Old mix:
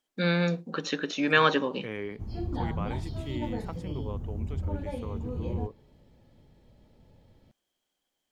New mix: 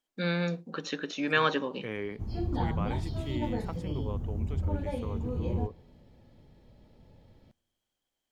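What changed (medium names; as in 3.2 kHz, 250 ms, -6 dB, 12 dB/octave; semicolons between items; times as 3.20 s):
first voice -4.0 dB; background: send on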